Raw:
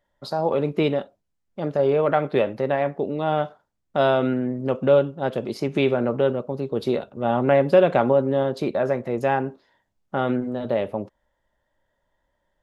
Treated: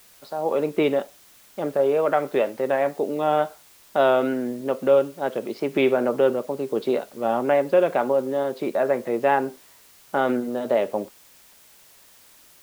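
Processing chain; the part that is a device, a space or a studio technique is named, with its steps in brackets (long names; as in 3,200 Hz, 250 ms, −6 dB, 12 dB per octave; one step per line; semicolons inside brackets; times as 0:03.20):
dictaphone (band-pass filter 270–3,300 Hz; automatic gain control; tape wow and flutter; white noise bed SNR 29 dB)
level −6.5 dB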